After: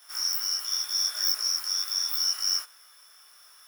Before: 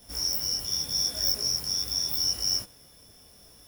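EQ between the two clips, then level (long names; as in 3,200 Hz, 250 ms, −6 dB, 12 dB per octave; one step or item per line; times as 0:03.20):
high-pass with resonance 1,300 Hz, resonance Q 3.4
0.0 dB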